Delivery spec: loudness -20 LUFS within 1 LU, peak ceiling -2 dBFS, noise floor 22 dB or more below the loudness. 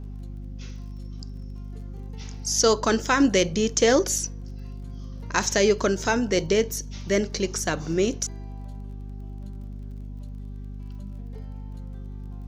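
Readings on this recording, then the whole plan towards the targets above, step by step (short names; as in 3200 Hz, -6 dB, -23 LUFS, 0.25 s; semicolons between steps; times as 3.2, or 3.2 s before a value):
ticks 30/s; hum 50 Hz; harmonics up to 250 Hz; hum level -33 dBFS; loudness -23.0 LUFS; peak -6.0 dBFS; loudness target -20.0 LUFS
-> de-click; de-hum 50 Hz, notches 5; gain +3 dB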